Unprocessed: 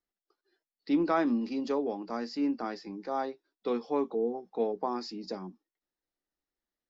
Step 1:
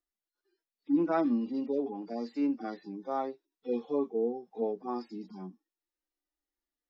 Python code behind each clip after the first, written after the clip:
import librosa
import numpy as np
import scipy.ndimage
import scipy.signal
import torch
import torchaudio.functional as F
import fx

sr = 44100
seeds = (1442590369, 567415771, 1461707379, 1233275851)

y = fx.hpss_only(x, sr, part='harmonic')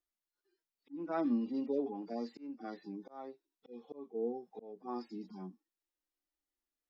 y = fx.auto_swell(x, sr, attack_ms=435.0)
y = F.gain(torch.from_numpy(y), -3.0).numpy()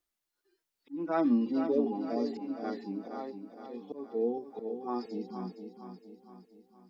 y = fx.echo_feedback(x, sr, ms=465, feedback_pct=48, wet_db=-8.5)
y = F.gain(torch.from_numpy(y), 6.0).numpy()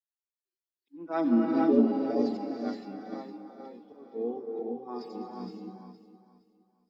y = fx.rev_gated(x, sr, seeds[0], gate_ms=500, shape='rising', drr_db=0.0)
y = fx.band_widen(y, sr, depth_pct=70)
y = F.gain(torch.from_numpy(y), -1.5).numpy()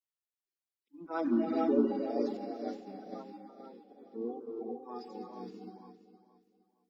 y = fx.spec_quant(x, sr, step_db=30)
y = F.gain(torch.from_numpy(y), -4.5).numpy()